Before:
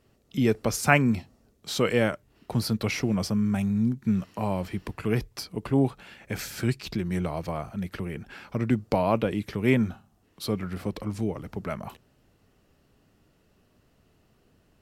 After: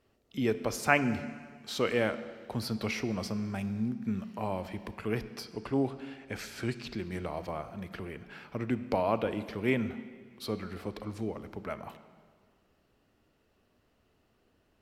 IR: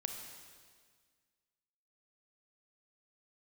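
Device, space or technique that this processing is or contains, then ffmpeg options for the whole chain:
filtered reverb send: -filter_complex "[0:a]asplit=2[link_01][link_02];[link_02]highpass=frequency=150:width=0.5412,highpass=frequency=150:width=1.3066,lowpass=5400[link_03];[1:a]atrim=start_sample=2205[link_04];[link_03][link_04]afir=irnorm=-1:irlink=0,volume=-3dB[link_05];[link_01][link_05]amix=inputs=2:normalize=0,asettb=1/sr,asplit=3[link_06][link_07][link_08];[link_06]atrim=end=5.544[link_09];[link_07]atrim=start=5.54:end=7,asetpts=PTS-STARTPTS,afade=type=in:duration=0.004:curve=qsin,afade=type=out:start_time=1.456:duration=0.004:curve=qsin,lowpass=11000[link_10];[link_08]atrim=start=6.996[link_11];[link_09][link_10]acrossfade=duration=0.004:curve1=hsin:curve2=qsin[link_12];[link_12][link_11]acrossfade=duration=0.004:curve1=qsin:curve2=hsin,volume=-8dB"

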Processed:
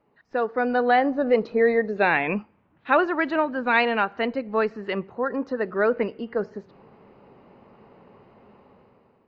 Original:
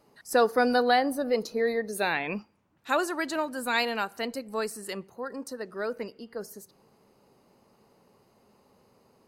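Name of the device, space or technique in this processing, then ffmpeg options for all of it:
action camera in a waterproof case: -af "lowpass=frequency=2800:width=0.5412,lowpass=frequency=2800:width=1.3066,dynaudnorm=framelen=250:gausssize=7:maxgain=15dB,volume=-4dB" -ar 16000 -c:a aac -b:a 64k

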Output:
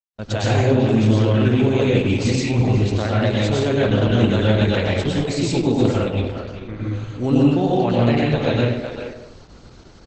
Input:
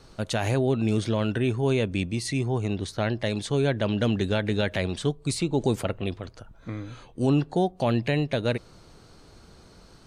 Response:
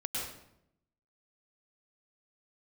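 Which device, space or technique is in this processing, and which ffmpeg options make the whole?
speakerphone in a meeting room: -filter_complex "[0:a]asettb=1/sr,asplit=3[link_01][link_02][link_03];[link_01]atrim=end=6.074[link_04];[link_02]atrim=start=6.07:end=6.83,asetpts=PTS-STARTPTS,afade=type=in:duration=0.004:curve=qsin,afade=type=out:start_time=0.756:duration=0.004:curve=qsin,lowpass=frequency=6000:width=0.5412,lowpass=frequency=6000:width=1.3066[link_05];[link_03]atrim=start=6.826[link_06];[link_04][link_05]acrossfade=duration=0.004:curve1=hsin:curve2=qsin[link_07];[link_07][link_06]acrossfade=duration=0.004:curve1=qsin:curve2=hsin[link_08];[1:a]atrim=start_sample=2205[link_09];[link_08][link_09]afir=irnorm=-1:irlink=0,asplit=2[link_10][link_11];[link_11]adelay=390,highpass=300,lowpass=3400,asoftclip=type=hard:threshold=-15dB,volume=-8dB[link_12];[link_10][link_12]amix=inputs=2:normalize=0,dynaudnorm=framelen=110:gausssize=5:maxgain=4dB,agate=range=-59dB:threshold=-42dB:ratio=16:detection=peak" -ar 48000 -c:a libopus -b:a 12k

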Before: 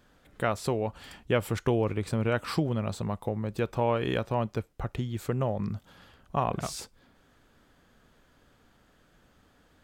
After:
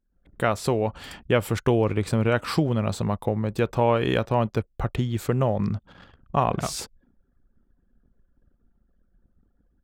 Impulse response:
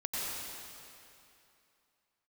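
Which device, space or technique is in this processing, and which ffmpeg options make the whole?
voice memo with heavy noise removal: -af "anlmdn=0.001,dynaudnorm=framelen=110:gausssize=3:maxgain=13dB,volume=-6dB"

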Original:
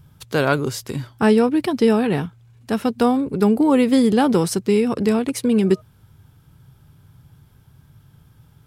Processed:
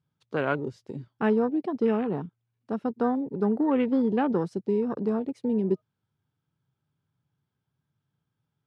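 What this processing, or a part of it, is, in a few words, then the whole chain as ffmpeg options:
over-cleaned archive recording: -filter_complex "[0:a]highpass=150,lowpass=5300,afwtdn=0.0398,asettb=1/sr,asplit=3[link_01][link_02][link_03];[link_01]atrim=end=3.634[link_04];[link_02]atrim=start=3.63:end=4.4,asetpts=PTS-STARTPTS,afade=type=in:duration=0.004:curve=qsin,afade=type=out:start_time=0.766:duration=0.004:curve=qsin,lowpass=6000[link_05];[link_03]atrim=start=4.396[link_06];[link_04][link_05]acrossfade=duration=0.004:curve1=hsin:curve2=qsin[link_07];[link_07][link_06]acrossfade=duration=0.004:curve1=qsin:curve2=hsin,volume=-8dB"

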